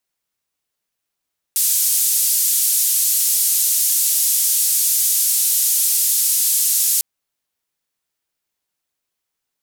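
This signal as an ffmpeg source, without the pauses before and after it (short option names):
-f lavfi -i "anoisesrc=c=white:d=5.45:r=44100:seed=1,highpass=f=6900,lowpass=f=14000,volume=-7.1dB"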